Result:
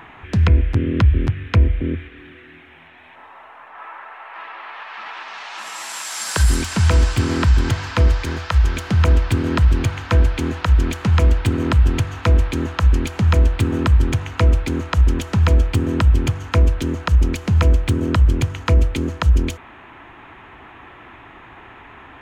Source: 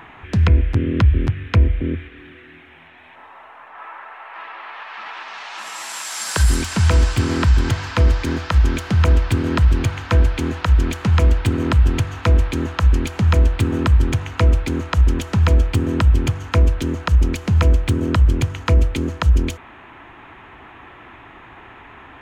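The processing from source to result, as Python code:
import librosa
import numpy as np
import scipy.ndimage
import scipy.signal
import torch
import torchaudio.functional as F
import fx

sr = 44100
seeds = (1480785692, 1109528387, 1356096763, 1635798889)

y = fx.peak_eq(x, sr, hz=250.0, db=fx.line((8.07, -5.5), (8.76, -12.5)), octaves=1.1, at=(8.07, 8.76), fade=0.02)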